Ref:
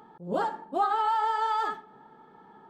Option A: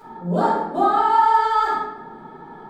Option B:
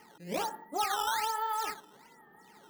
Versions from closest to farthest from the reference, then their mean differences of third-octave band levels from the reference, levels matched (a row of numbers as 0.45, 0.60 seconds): A, B; 4.5, 7.5 decibels